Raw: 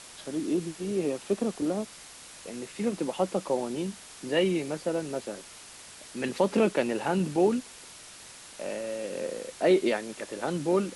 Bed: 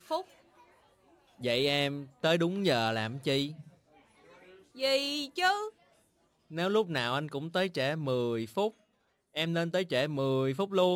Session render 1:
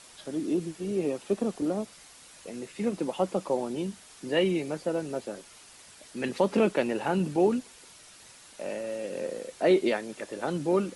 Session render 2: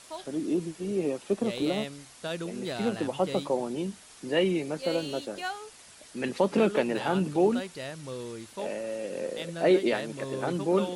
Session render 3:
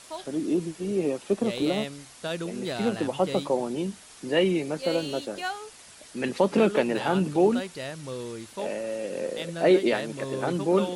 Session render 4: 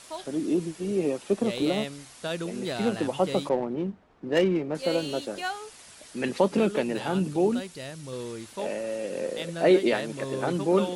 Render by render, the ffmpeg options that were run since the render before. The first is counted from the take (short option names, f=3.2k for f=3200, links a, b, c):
-af "afftdn=nr=6:nf=-48"
-filter_complex "[1:a]volume=-7.5dB[a];[0:a][a]amix=inputs=2:normalize=0"
-af "volume=2.5dB"
-filter_complex "[0:a]asettb=1/sr,asplit=3[a][b][c];[a]atrim=end=3.494[d];[b]atrim=start=3.49:end=4.75,asetpts=PTS-STARTPTS,afade=t=in:d=0.004:c=qsin,afade=t=out:st=1.256:d=0.004:c=qsin,adynamicsmooth=sensitivity=2:basefreq=940[e];[c]atrim=start=4.746[f];[d][e]acrossfade=d=0.004:c1=hsin:c2=qsin[g];[g][f]acrossfade=d=0.004:c1=qsin:c2=hsin,asettb=1/sr,asplit=3[h][i][j];[h]atrim=end=6.484[k];[i]atrim=start=6.48:end=8.13,asetpts=PTS-STARTPTS,afade=t=in:d=0.004:c=qsin,afade=t=out:st=1.646:d=0.004:c=qsin,equalizer=f=1.1k:w=0.35:g=-5[l];[j]atrim=start=8.126[m];[k][l]acrossfade=d=0.004:c1=hsin:c2=qsin[n];[n][m]acrossfade=d=0.004:c1=qsin:c2=hsin"